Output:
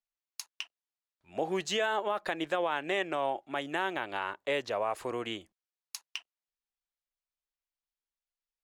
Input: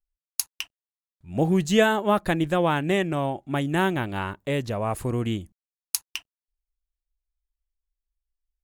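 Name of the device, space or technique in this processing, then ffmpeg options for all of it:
DJ mixer with the lows and highs turned down: -filter_complex "[0:a]acrossover=split=400 6500:gain=0.0631 1 0.2[a][b][c];[a][b][c]amix=inputs=3:normalize=0,alimiter=limit=-20.5dB:level=0:latency=1:release=112"

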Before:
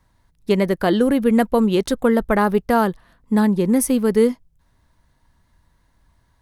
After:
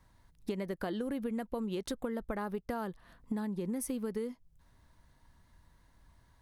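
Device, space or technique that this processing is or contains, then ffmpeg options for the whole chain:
serial compression, leveller first: -af "acompressor=threshold=-19dB:ratio=2,acompressor=threshold=-31dB:ratio=6,volume=-3dB"

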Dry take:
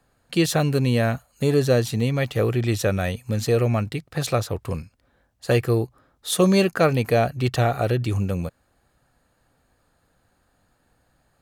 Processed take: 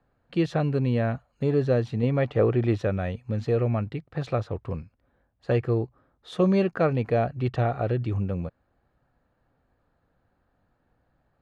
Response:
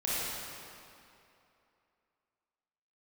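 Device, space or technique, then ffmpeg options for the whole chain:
phone in a pocket: -filter_complex "[0:a]asettb=1/sr,asplit=3[a][b][c];[a]atrim=end=2.034[d];[b]atrim=start=2.03:end=2.82,asetpts=PTS-STARTPTS,afade=t=in:d=0.004:c=qsin,afade=t=out:st=0.786:d=0.004:c=qsin,equalizer=f=640:w=0.35:g=5.5[e];[c]atrim=start=2.816[f];[d][e]acrossfade=d=0.004:c1=hsin:c2=qsin[g];[g][f]acrossfade=d=0.004:c1=qsin:c2=hsin,lowpass=3.7k,highshelf=f=2.1k:g=-10,volume=-3.5dB"

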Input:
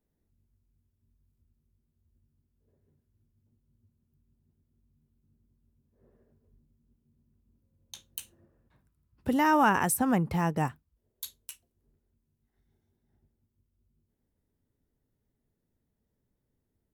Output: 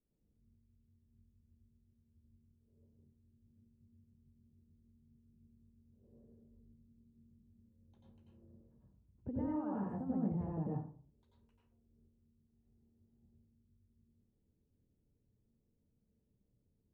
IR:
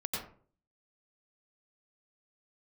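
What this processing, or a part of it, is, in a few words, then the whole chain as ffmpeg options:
television next door: -filter_complex "[0:a]acompressor=threshold=-36dB:ratio=3,lowpass=500[a];[1:a]atrim=start_sample=2205[b];[a][b]afir=irnorm=-1:irlink=0,volume=-3.5dB"

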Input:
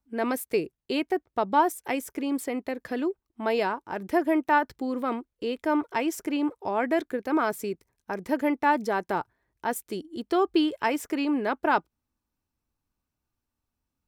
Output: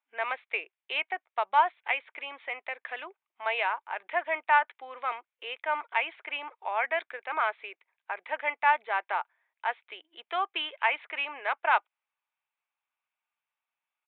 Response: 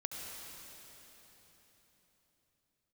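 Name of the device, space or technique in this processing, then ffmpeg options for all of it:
musical greeting card: -af "aresample=8000,aresample=44100,highpass=f=720:w=0.5412,highpass=f=720:w=1.3066,equalizer=f=2.3k:t=o:w=0.51:g=8.5"

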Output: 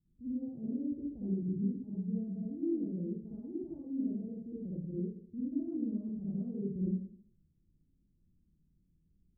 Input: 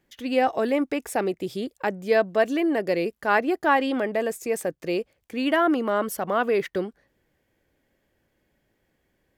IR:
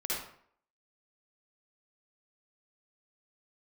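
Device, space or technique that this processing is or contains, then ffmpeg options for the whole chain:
club heard from the street: -filter_complex "[0:a]alimiter=limit=-16.5dB:level=0:latency=1:release=228,lowpass=f=200:w=0.5412,lowpass=f=200:w=1.3066[a];[1:a]atrim=start_sample=2205[b];[a][b]afir=irnorm=-1:irlink=0"

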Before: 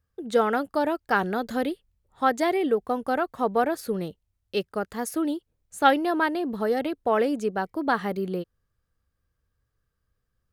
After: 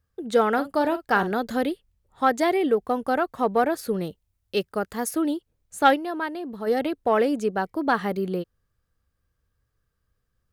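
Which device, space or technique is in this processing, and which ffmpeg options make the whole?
parallel distortion: -filter_complex "[0:a]asettb=1/sr,asplit=3[a][b][c];[a]atrim=end=0.534[d];[b]atrim=start=0.53:end=1.32,asetpts=PTS-STARTPTS,afade=t=in:d=0.004:c=qsin,afade=t=out:st=0.786:d=0.004:c=qsin,asplit=2[e][f];[f]adelay=47,volume=-12dB[g];[e][g]amix=inputs=2:normalize=0,atrim=end_sample=34839[h];[c]atrim=start=1.316[i];[d][h]acrossfade=d=0.004:c1=hsin:c2=qsin[j];[j][i]acrossfade=d=0.004:c1=qsin:c2=hsin,asettb=1/sr,asplit=3[k][l][m];[k]atrim=end=4.044[n];[l]atrim=start=4.04:end=5.11,asetpts=PTS-STARTPTS,afade=t=in:d=0.004:c=qsin,afade=t=out:st=1.066:d=0.004:c=qsin,highshelf=f=9.1k:g=4.5[o];[m]atrim=start=5.106[p];[n][o]acrossfade=d=0.004:c1=hsin:c2=qsin[q];[q][p]acrossfade=d=0.004:c1=qsin:c2=hsin,asplit=3[r][s][t];[r]afade=t=out:st=5.9:d=0.02[u];[s]agate=range=-7dB:threshold=-19dB:ratio=16:detection=peak,afade=t=in:st=5.9:d=0.02,afade=t=out:st=6.66:d=0.02[v];[t]afade=t=in:st=6.66:d=0.02[w];[u][v][w]amix=inputs=3:normalize=0,asplit=2[x][y];[y]asoftclip=type=hard:threshold=-17dB,volume=-12dB[z];[x][z]amix=inputs=2:normalize=0"

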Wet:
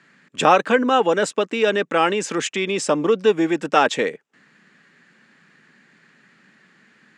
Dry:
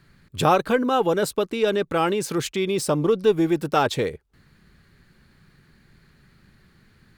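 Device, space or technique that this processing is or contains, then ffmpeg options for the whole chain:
television speaker: -af "highpass=f=210:w=0.5412,highpass=f=210:w=1.3066,equalizer=f=370:t=q:w=4:g=-5,equalizer=f=1.8k:t=q:w=4:g=6,equalizer=f=2.7k:t=q:w=4:g=4,equalizer=f=4.3k:t=q:w=4:g=-7,equalizer=f=7.3k:t=q:w=4:g=5,lowpass=f=7.5k:w=0.5412,lowpass=f=7.5k:w=1.3066,volume=4dB"

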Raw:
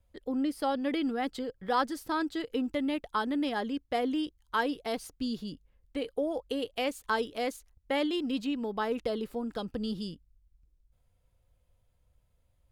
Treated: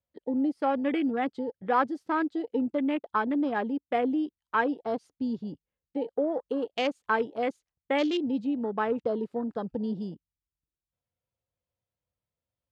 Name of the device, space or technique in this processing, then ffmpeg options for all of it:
over-cleaned archive recording: -af "highpass=130,lowpass=6.1k,afwtdn=0.01,volume=3.5dB"

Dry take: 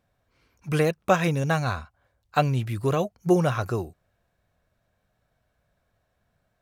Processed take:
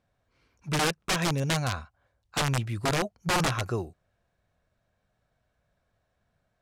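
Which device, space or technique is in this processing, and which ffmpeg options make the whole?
overflowing digital effects unit: -af "aeval=exprs='(mod(7.08*val(0)+1,2)-1)/7.08':c=same,lowpass=9.2k,volume=-2.5dB"

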